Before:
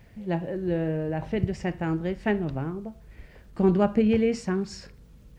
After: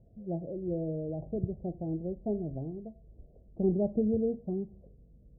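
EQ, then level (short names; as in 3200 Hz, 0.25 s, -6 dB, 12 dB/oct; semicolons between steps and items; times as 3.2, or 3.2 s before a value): Chebyshev low-pass 690 Hz, order 5; -6.0 dB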